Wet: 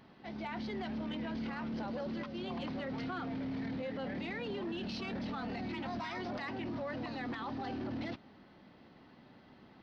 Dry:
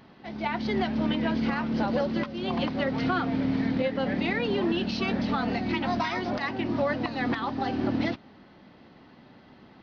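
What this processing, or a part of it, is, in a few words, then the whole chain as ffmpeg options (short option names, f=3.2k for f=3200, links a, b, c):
soft clipper into limiter: -af "asoftclip=type=tanh:threshold=-17.5dB,alimiter=level_in=3dB:limit=-24dB:level=0:latency=1:release=12,volume=-3dB,volume=-6dB"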